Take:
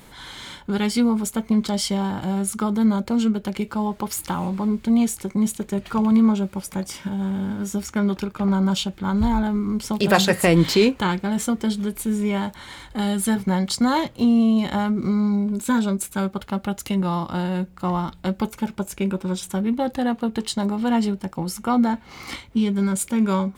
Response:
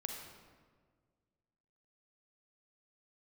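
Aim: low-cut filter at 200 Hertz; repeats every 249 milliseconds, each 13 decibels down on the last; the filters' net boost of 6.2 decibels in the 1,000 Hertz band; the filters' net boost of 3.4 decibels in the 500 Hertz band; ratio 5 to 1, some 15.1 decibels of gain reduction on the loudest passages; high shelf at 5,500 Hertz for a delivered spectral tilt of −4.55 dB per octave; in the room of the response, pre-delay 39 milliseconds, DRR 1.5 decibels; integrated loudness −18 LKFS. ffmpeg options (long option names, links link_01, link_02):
-filter_complex "[0:a]highpass=200,equalizer=frequency=500:width_type=o:gain=3,equalizer=frequency=1000:width_type=o:gain=6.5,highshelf=frequency=5500:gain=6.5,acompressor=threshold=-25dB:ratio=5,aecho=1:1:249|498|747:0.224|0.0493|0.0108,asplit=2[link_01][link_02];[1:a]atrim=start_sample=2205,adelay=39[link_03];[link_02][link_03]afir=irnorm=-1:irlink=0,volume=-1dB[link_04];[link_01][link_04]amix=inputs=2:normalize=0,volume=8.5dB"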